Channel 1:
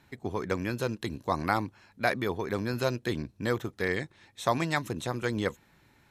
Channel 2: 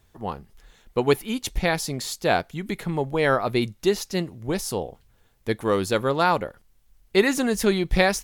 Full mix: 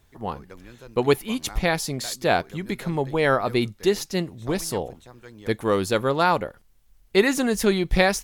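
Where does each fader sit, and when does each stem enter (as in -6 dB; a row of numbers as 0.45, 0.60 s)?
-14.5, +0.5 dB; 0.00, 0.00 s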